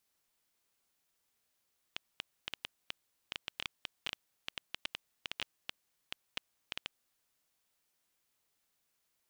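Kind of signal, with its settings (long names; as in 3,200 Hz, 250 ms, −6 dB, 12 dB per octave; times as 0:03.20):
Geiger counter clicks 7.1 per second −19 dBFS 5.13 s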